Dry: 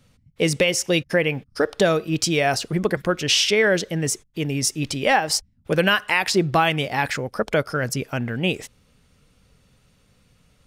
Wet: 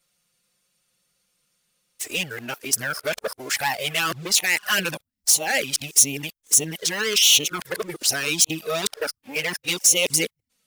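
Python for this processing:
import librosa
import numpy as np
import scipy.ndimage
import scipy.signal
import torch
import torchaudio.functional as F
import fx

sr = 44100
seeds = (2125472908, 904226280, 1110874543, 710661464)

y = np.flip(x).copy()
y = fx.leveller(y, sr, passes=2)
y = fx.riaa(y, sr, side='recording')
y = fx.env_flanger(y, sr, rest_ms=5.7, full_db=-6.5)
y = y * librosa.db_to_amplitude(-6.0)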